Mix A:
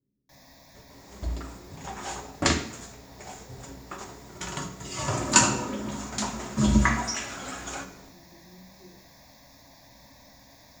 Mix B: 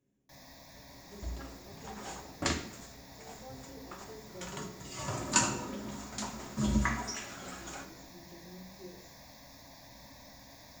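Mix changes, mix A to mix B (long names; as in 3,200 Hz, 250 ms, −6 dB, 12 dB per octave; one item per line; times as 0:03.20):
speech: remove moving average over 58 samples
second sound −8.5 dB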